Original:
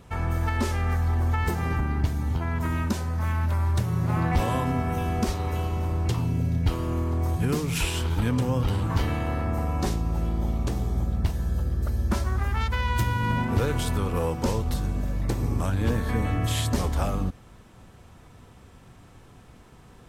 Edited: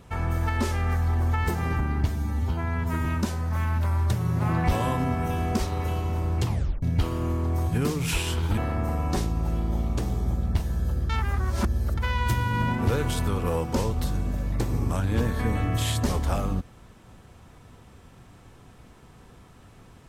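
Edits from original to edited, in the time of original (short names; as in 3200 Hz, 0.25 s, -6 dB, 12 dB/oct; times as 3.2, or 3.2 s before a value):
2.08–2.73 stretch 1.5×
6.14 tape stop 0.36 s
8.25–9.27 cut
11.79–12.67 reverse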